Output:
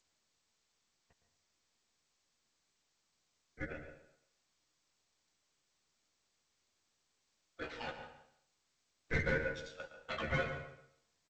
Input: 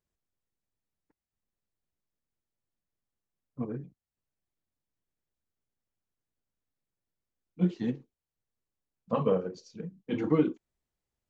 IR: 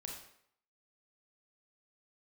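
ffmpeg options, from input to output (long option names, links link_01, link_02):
-filter_complex "[0:a]highpass=frequency=700:width=0.5412,highpass=frequency=700:width=1.3066,aemphasis=mode=production:type=50fm,asplit=2[link_01][link_02];[link_02]acompressor=threshold=-51dB:ratio=10,volume=0dB[link_03];[link_01][link_03]amix=inputs=2:normalize=0,asoftclip=type=tanh:threshold=-33.5dB,aeval=exprs='val(0)*sin(2*PI*1000*n/s)':channel_layout=same,adynamicsmooth=sensitivity=6.5:basefreq=1800,asplit=2[link_04][link_05];[link_05]adelay=13,volume=-4dB[link_06];[link_04][link_06]amix=inputs=2:normalize=0,aecho=1:1:140|280:0.2|0.0339,asplit=2[link_07][link_08];[1:a]atrim=start_sample=2205,highshelf=frequency=2600:gain=-7.5,adelay=113[link_09];[link_08][link_09]afir=irnorm=-1:irlink=0,volume=-4.5dB[link_10];[link_07][link_10]amix=inputs=2:normalize=0,volume=8dB" -ar 16000 -c:a g722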